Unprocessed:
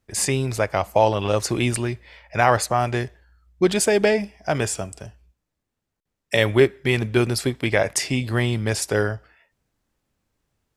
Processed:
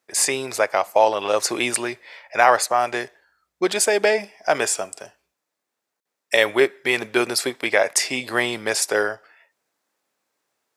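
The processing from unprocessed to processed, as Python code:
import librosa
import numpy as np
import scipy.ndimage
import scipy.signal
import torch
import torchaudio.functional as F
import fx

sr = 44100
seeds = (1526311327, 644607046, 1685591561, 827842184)

p1 = scipy.signal.sosfilt(scipy.signal.butter(2, 480.0, 'highpass', fs=sr, output='sos'), x)
p2 = fx.peak_eq(p1, sr, hz=3000.0, db=-3.5, octaves=0.31)
p3 = fx.rider(p2, sr, range_db=10, speed_s=0.5)
p4 = p2 + (p3 * librosa.db_to_amplitude(0.5))
y = p4 * librosa.db_to_amplitude(-2.5)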